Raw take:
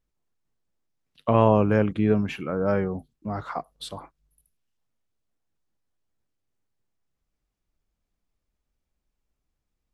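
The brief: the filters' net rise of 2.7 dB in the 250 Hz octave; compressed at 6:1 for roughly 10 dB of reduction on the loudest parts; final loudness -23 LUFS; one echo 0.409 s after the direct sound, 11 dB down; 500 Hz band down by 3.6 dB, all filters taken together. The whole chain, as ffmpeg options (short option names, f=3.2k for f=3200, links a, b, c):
-af "equalizer=f=250:t=o:g=4.5,equalizer=f=500:t=o:g=-5.5,acompressor=threshold=-25dB:ratio=6,aecho=1:1:409:0.282,volume=9dB"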